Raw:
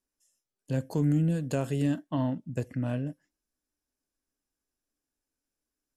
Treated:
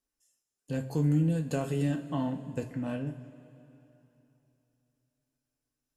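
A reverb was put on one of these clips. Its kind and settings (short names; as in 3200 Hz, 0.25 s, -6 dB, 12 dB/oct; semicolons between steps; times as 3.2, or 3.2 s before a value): two-slope reverb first 0.21 s, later 3.2 s, from -20 dB, DRR 2.5 dB; gain -2.5 dB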